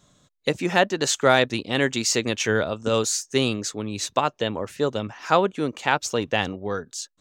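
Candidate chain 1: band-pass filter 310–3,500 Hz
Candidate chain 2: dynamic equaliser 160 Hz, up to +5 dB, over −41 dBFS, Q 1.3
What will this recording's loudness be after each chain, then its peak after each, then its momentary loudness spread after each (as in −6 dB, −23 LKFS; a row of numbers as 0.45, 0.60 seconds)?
−25.5, −23.0 LKFS; −4.5, −3.0 dBFS; 11, 8 LU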